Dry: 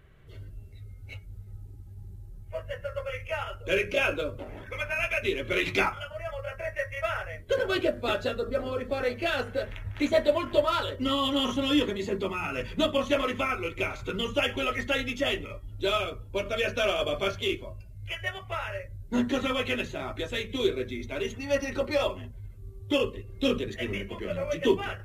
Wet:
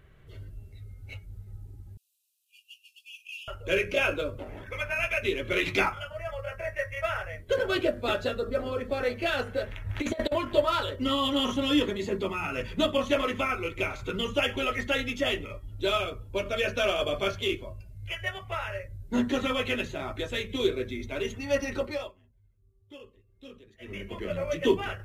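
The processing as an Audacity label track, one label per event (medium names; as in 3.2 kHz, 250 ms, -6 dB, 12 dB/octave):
1.970000	3.480000	brick-wall FIR high-pass 2.4 kHz
9.890000	10.360000	compressor with a negative ratio -28 dBFS, ratio -0.5
21.740000	24.160000	dip -22 dB, fades 0.38 s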